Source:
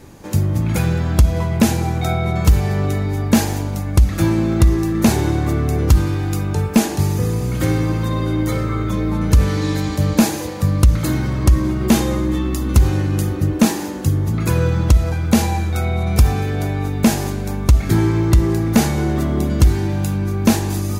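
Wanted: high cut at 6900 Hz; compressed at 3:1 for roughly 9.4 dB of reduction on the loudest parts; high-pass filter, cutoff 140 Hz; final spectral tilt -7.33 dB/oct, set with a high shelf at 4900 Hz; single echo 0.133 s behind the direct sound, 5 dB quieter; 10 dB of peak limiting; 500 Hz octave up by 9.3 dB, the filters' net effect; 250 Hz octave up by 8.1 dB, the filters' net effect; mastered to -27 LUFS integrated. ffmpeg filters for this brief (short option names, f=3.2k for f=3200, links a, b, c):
-af "highpass=140,lowpass=6.9k,equalizer=f=250:t=o:g=8.5,equalizer=f=500:t=o:g=9,highshelf=f=4.9k:g=-5.5,acompressor=threshold=-13dB:ratio=3,alimiter=limit=-10dB:level=0:latency=1,aecho=1:1:133:0.562,volume=-9dB"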